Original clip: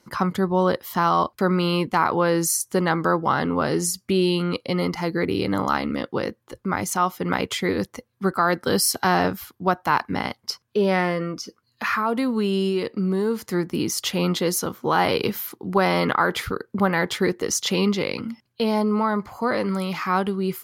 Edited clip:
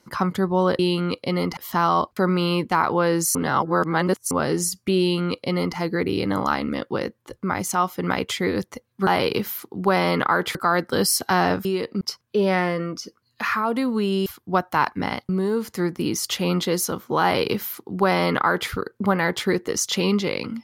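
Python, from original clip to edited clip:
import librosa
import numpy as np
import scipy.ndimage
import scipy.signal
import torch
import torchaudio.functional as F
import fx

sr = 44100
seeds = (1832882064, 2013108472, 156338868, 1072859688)

y = fx.edit(x, sr, fx.reverse_span(start_s=2.57, length_s=0.96),
    fx.duplicate(start_s=4.21, length_s=0.78, to_s=0.79),
    fx.swap(start_s=9.39, length_s=1.03, other_s=12.67, other_length_s=0.36),
    fx.duplicate(start_s=14.96, length_s=1.48, to_s=8.29), tone=tone)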